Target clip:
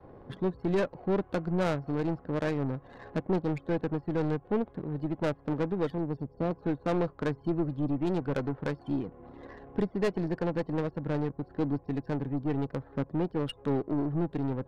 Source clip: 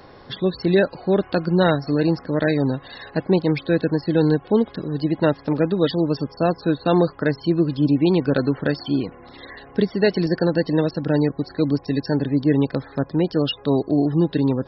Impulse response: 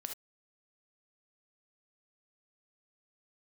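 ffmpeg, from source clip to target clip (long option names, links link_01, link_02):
-filter_complex "[0:a]asettb=1/sr,asplit=3[link_01][link_02][link_03];[link_01]atrim=end=5.984[link_04];[link_02]atrim=start=5.98:end=6.51,asetpts=PTS-STARTPTS,afade=type=in:duration=0.004:curve=qsin,afade=type=out:start_time=0.526:duration=0.004:curve=qsin,equalizer=frequency=1300:width_type=o:width=1.6:gain=-11[link_05];[link_03]atrim=start=6.506[link_06];[link_04][link_05]acrossfade=duration=0.004:curve1=hsin:curve2=qsin[link_07];[link_07][link_06]acrossfade=duration=0.004:curve1=qsin:curve2=hsin,aeval=exprs='(tanh(3.98*val(0)+0.35)-tanh(0.35))/3.98':channel_layout=same,asplit=2[link_08][link_09];[link_09]acompressor=threshold=-33dB:ratio=6,volume=1dB[link_10];[link_08][link_10]amix=inputs=2:normalize=0,adynamicequalizer=threshold=0.0316:dfrequency=270:dqfactor=1.2:tfrequency=270:tqfactor=1.2:attack=5:release=100:ratio=0.375:range=2.5:mode=cutabove:tftype=bell,adynamicsmooth=sensitivity=1:basefreq=650,volume=-8dB"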